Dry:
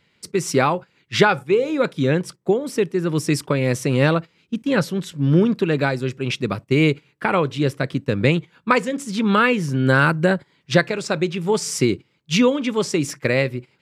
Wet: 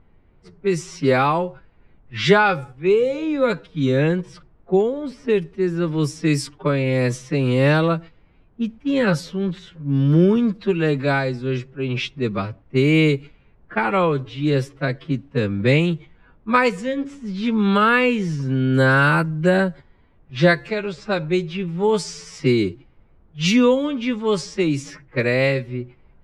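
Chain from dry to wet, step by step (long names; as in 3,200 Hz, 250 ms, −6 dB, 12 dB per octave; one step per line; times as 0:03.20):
phase-vocoder stretch with locked phases 1.9×
background noise brown −52 dBFS
low-pass that shuts in the quiet parts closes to 1,300 Hz, open at −14 dBFS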